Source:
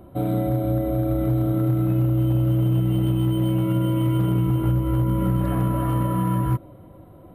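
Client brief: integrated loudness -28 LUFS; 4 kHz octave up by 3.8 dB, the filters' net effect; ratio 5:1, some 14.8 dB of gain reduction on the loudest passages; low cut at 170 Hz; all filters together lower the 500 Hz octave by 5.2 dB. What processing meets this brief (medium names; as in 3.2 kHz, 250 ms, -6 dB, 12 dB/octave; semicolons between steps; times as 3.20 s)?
high-pass 170 Hz; peaking EQ 500 Hz -8 dB; peaking EQ 4 kHz +6 dB; compression 5:1, threshold -40 dBFS; trim +13.5 dB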